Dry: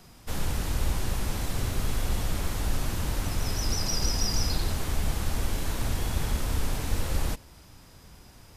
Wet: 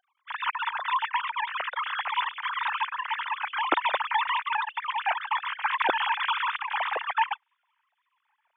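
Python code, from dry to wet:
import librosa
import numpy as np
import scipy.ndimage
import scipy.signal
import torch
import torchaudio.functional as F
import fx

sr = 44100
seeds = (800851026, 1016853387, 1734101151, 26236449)

y = fx.sine_speech(x, sr)
y = scipy.signal.sosfilt(scipy.signal.butter(2, 670.0, 'highpass', fs=sr, output='sos'), y)
y = fx.high_shelf(y, sr, hz=2900.0, db=-9.0)
y = fx.echo_wet_highpass(y, sr, ms=292, feedback_pct=83, hz=3000.0, wet_db=-23.0)
y = fx.wow_flutter(y, sr, seeds[0], rate_hz=2.1, depth_cents=27.0)
y = fx.upward_expand(y, sr, threshold_db=-46.0, expansion=2.5)
y = F.gain(torch.from_numpy(y), 5.0).numpy()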